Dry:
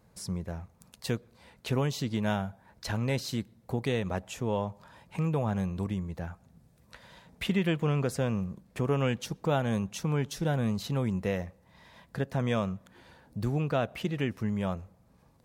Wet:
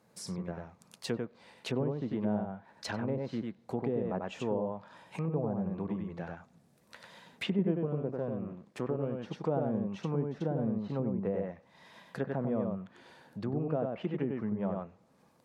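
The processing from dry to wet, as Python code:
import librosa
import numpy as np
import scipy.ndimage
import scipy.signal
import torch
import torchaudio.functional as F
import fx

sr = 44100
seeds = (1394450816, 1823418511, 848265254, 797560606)

p1 = fx.halfwave_gain(x, sr, db=-12.0, at=(7.85, 9.18))
p2 = fx.vibrato(p1, sr, rate_hz=6.1, depth_cents=13.0)
p3 = p2 + fx.echo_single(p2, sr, ms=95, db=-3.5, dry=0)
p4 = fx.env_lowpass_down(p3, sr, base_hz=590.0, full_db=-24.0)
p5 = scipy.signal.sosfilt(scipy.signal.butter(2, 190.0, 'highpass', fs=sr, output='sos'), p4)
y = p5 * librosa.db_to_amplitude(-1.0)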